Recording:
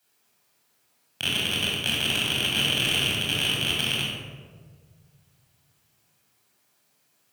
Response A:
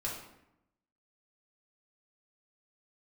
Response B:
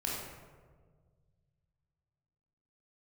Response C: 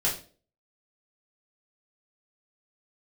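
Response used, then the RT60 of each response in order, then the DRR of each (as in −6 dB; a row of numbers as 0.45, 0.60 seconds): B; 0.85, 1.6, 0.40 seconds; −5.0, −5.0, −6.5 decibels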